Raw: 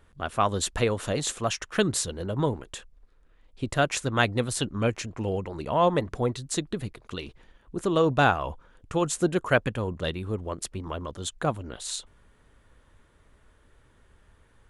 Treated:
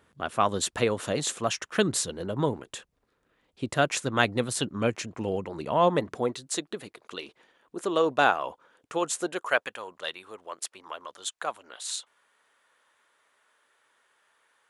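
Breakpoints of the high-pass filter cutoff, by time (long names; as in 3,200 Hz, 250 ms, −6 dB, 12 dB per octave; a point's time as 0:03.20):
0:05.93 140 Hz
0:06.56 360 Hz
0:08.92 360 Hz
0:09.76 810 Hz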